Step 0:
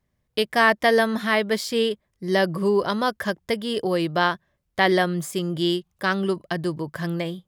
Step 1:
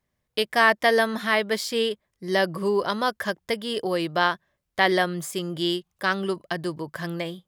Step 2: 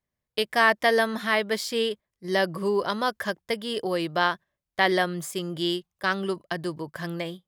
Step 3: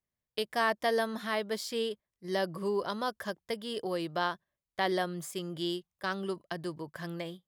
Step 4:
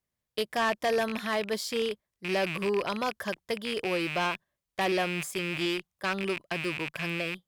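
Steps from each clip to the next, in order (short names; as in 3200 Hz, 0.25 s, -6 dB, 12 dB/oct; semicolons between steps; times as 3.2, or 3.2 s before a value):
low shelf 310 Hz -7 dB
gate -36 dBFS, range -7 dB; gain -1.5 dB
dynamic EQ 2100 Hz, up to -6 dB, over -38 dBFS, Q 1.4; gain -6.5 dB
rattling part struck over -51 dBFS, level -26 dBFS; added harmonics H 5 -14 dB, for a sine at -15 dBFS; gain -2 dB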